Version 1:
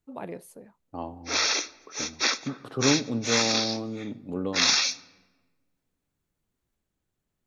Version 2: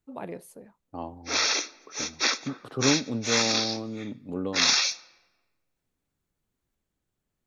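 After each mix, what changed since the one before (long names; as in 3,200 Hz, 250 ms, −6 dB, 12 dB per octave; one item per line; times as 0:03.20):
second voice: send off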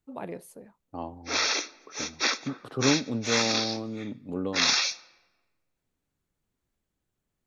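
background: add high-shelf EQ 8,500 Hz −9.5 dB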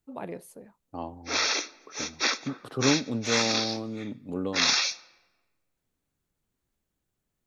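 second voice: add high-shelf EQ 5,000 Hz +6.5 dB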